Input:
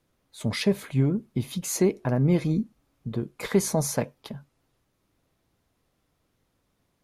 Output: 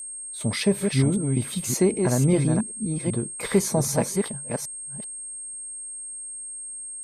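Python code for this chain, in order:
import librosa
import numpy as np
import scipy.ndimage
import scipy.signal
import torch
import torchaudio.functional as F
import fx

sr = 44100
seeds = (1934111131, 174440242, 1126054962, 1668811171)

y = fx.reverse_delay(x, sr, ms=388, wet_db=-4.5)
y = y + 10.0 ** (-35.0 / 20.0) * np.sin(2.0 * np.pi * 8500.0 * np.arange(len(y)) / sr)
y = y * librosa.db_to_amplitude(1.5)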